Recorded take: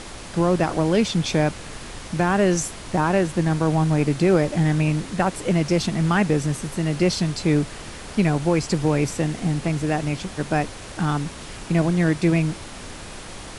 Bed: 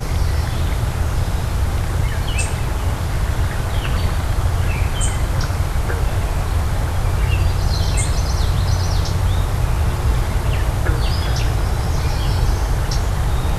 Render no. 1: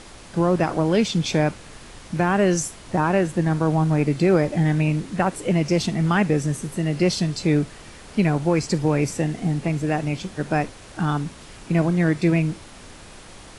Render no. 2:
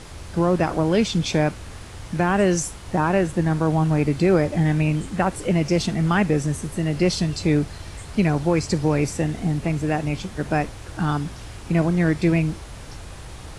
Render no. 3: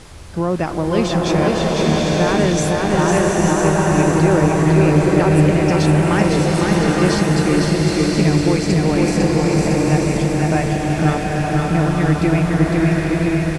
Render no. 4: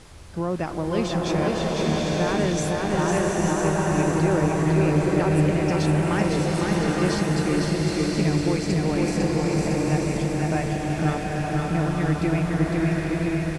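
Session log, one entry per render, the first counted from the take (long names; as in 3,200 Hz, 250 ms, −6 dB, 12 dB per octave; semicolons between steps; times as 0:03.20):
noise reduction from a noise print 6 dB
mix in bed −20.5 dB
repeating echo 505 ms, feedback 57%, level −3.5 dB; slow-attack reverb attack 920 ms, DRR −2.5 dB
level −7 dB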